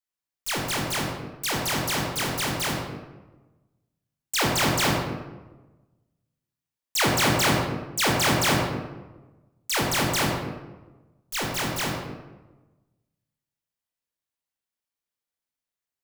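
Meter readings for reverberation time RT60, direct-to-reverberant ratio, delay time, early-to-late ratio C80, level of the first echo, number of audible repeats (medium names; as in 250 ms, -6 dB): 1.2 s, -1.5 dB, no echo, 4.5 dB, no echo, no echo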